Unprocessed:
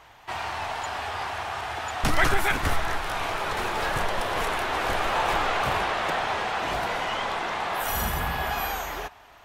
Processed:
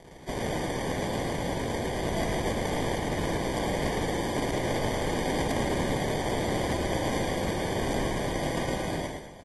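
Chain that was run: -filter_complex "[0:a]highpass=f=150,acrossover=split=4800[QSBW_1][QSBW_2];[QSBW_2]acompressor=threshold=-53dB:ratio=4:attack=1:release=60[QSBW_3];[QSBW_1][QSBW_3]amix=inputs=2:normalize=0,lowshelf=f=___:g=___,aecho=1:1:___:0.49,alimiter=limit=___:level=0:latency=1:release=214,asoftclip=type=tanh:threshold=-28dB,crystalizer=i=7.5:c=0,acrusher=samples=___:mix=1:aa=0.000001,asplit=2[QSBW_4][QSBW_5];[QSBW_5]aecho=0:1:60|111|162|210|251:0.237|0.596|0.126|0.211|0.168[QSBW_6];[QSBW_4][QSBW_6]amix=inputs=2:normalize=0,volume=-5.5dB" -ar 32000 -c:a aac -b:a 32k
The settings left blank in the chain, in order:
310, -3.5, 5.1, -16dB, 33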